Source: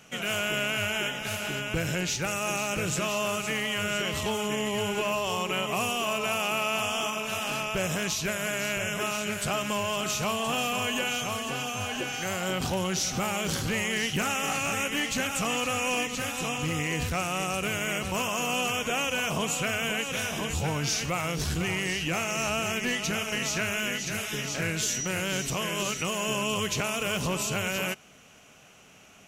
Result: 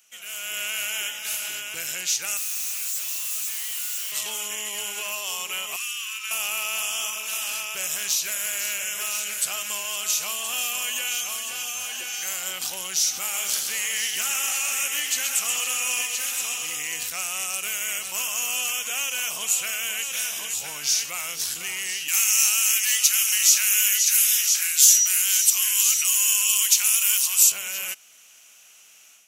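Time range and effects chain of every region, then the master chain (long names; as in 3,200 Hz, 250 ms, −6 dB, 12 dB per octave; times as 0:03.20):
0:02.37–0:04.12: first-order pre-emphasis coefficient 0.97 + comparator with hysteresis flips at −46.5 dBFS
0:05.76–0:06.31: Butterworth high-pass 1,300 Hz + high-shelf EQ 6,300 Hz −9.5 dB
0:07.98–0:09.41: gain into a clipping stage and back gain 22.5 dB + steady tone 530 Hz −48 dBFS + flutter between parallel walls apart 9.2 metres, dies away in 0.23 s
0:13.20–0:16.77: high-pass filter 180 Hz 6 dB per octave + single-tap delay 129 ms −6 dB
0:22.08–0:27.52: high-pass filter 780 Hz 24 dB per octave + spectral tilt +3.5 dB per octave
whole clip: first difference; automatic gain control gain up to 9.5 dB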